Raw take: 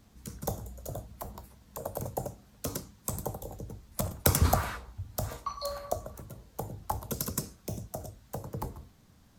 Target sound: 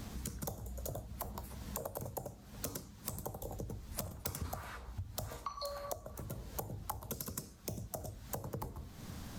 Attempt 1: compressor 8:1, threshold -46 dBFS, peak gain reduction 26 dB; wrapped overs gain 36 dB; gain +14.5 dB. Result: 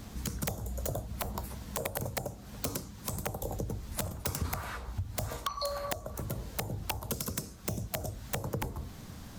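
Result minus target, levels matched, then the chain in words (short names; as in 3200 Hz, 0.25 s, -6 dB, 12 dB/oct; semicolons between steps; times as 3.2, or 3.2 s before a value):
compressor: peak gain reduction -7.5 dB
compressor 8:1, threshold -54.5 dBFS, peak gain reduction 33.5 dB; wrapped overs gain 36 dB; gain +14.5 dB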